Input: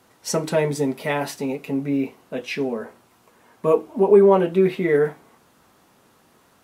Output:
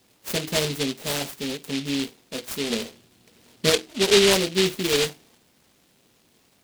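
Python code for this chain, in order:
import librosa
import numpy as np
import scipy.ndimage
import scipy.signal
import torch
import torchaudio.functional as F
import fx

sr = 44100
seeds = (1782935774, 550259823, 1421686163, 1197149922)

y = fx.low_shelf(x, sr, hz=470.0, db=8.5, at=(2.7, 3.7))
y = fx.noise_mod_delay(y, sr, seeds[0], noise_hz=3200.0, depth_ms=0.25)
y = y * 10.0 ** (-4.0 / 20.0)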